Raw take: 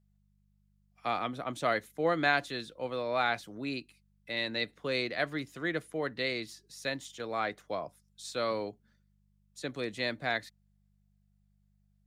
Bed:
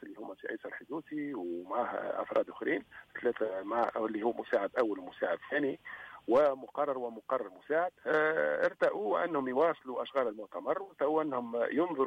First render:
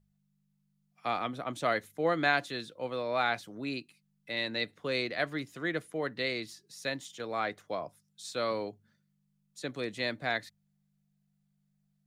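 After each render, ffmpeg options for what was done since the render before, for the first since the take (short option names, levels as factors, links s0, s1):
-af "bandreject=f=50:t=h:w=4,bandreject=f=100:t=h:w=4"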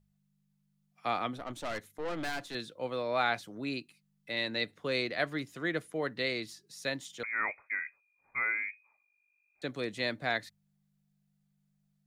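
-filter_complex "[0:a]asettb=1/sr,asplit=3[s0][s1][s2];[s0]atrim=end=1.374[s3];[s1]atrim=start=1.37:end=2.55,asetpts=PTS-STARTPTS,afade=t=in:d=0.004:c=qsin,afade=t=out:st=1.176:d=0.004:c=qsin,aeval=exprs='(tanh(44.7*val(0)+0.6)-tanh(0.6))/44.7':c=same[s4];[s2]atrim=start=2.546[s5];[s3][s4]acrossfade=d=0.004:c1=hsin:c2=qsin[s6];[s6][s5]acrossfade=d=0.004:c1=qsin:c2=hsin,asettb=1/sr,asplit=3[s7][s8][s9];[s7]atrim=end=7.234[s10];[s8]atrim=start=7.23:end=9.62,asetpts=PTS-STARTPTS,afade=t=in:d=0.004:c=qsin,afade=t=out:st=2.386:d=0.004:c=qsin,lowpass=f=2200:t=q:w=0.5098,lowpass=f=2200:t=q:w=0.6013,lowpass=f=2200:t=q:w=0.9,lowpass=f=2200:t=q:w=2.563,afreqshift=-2600[s11];[s9]atrim=start=9.616[s12];[s10][s11]acrossfade=d=0.004:c1=hsin:c2=qsin[s13];[s13][s12]acrossfade=d=0.004:c1=qsin:c2=hsin"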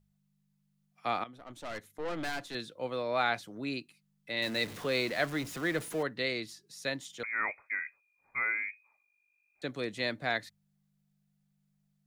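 -filter_complex "[0:a]asettb=1/sr,asplit=3[s0][s1][s2];[s0]atrim=end=4.424[s3];[s1]atrim=start=4.42:end=6.03,asetpts=PTS-STARTPTS,afade=t=in:d=0.004:c=qsin,afade=t=out:st=1.606:d=0.004:c=qsin,aeval=exprs='val(0)+0.5*0.0106*sgn(val(0))':c=same[s4];[s2]atrim=start=6.026[s5];[s3][s4]acrossfade=d=0.004:c1=hsin:c2=qsin[s6];[s6][s5]acrossfade=d=0.004:c1=qsin:c2=hsin,asplit=2[s7][s8];[s7]atrim=end=1.24,asetpts=PTS-STARTPTS,afade=t=out:st=1.236:d=0.004:c=hsin:silence=0.158489[s9];[s8]atrim=start=1.24,asetpts=PTS-STARTPTS,afade=t=in:d=0.77:silence=0.158489[s10];[s9][s10]concat=n=2:v=0:a=1"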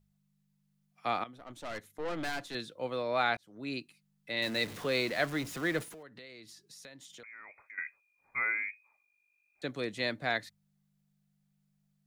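-filter_complex "[0:a]asettb=1/sr,asplit=3[s0][s1][s2];[s0]atrim=end=5.834[s3];[s1]atrim=start=5.83:end=7.78,asetpts=PTS-STARTPTS,afade=t=in:d=0.004:c=qsin,afade=t=out:st=1.946:d=0.004:c=qsin,acompressor=threshold=0.00398:ratio=6:attack=3.2:release=140:knee=1:detection=peak[s4];[s2]atrim=start=7.776[s5];[s3][s4]acrossfade=d=0.004:c1=hsin:c2=qsin[s6];[s6][s5]acrossfade=d=0.004:c1=qsin:c2=hsin,asplit=2[s7][s8];[s7]atrim=end=3.37,asetpts=PTS-STARTPTS,afade=t=out:st=3.366:d=0.004:c=hsin[s9];[s8]atrim=start=3.37,asetpts=PTS-STARTPTS,afade=t=in:d=0.41[s10];[s9][s10]concat=n=2:v=0:a=1"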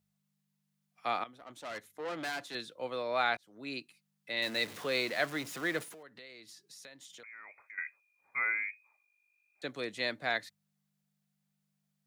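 -af "highpass=78,lowshelf=f=270:g=-9"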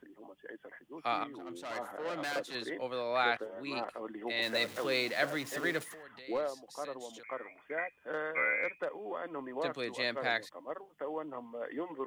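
-filter_complex "[1:a]volume=0.376[s0];[0:a][s0]amix=inputs=2:normalize=0"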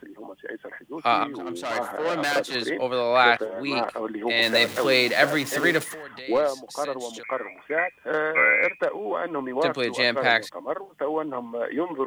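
-af "volume=3.98"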